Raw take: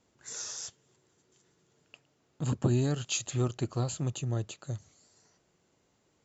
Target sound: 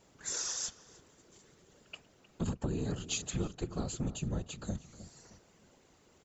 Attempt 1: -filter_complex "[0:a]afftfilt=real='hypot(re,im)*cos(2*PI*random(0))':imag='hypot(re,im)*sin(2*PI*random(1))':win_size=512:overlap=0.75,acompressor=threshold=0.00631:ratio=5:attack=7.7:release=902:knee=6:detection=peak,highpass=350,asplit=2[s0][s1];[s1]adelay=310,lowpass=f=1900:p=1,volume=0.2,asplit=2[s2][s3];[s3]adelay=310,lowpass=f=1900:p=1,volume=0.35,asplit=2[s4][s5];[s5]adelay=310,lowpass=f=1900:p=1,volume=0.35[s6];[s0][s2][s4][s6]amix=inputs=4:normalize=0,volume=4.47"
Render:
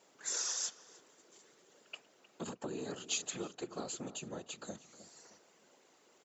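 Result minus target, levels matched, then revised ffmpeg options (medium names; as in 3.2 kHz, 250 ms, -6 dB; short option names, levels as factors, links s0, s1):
250 Hz band -5.0 dB
-filter_complex "[0:a]afftfilt=real='hypot(re,im)*cos(2*PI*random(0))':imag='hypot(re,im)*sin(2*PI*random(1))':win_size=512:overlap=0.75,acompressor=threshold=0.00631:ratio=5:attack=7.7:release=902:knee=6:detection=peak,asplit=2[s0][s1];[s1]adelay=310,lowpass=f=1900:p=1,volume=0.2,asplit=2[s2][s3];[s3]adelay=310,lowpass=f=1900:p=1,volume=0.35,asplit=2[s4][s5];[s5]adelay=310,lowpass=f=1900:p=1,volume=0.35[s6];[s0][s2][s4][s6]amix=inputs=4:normalize=0,volume=4.47"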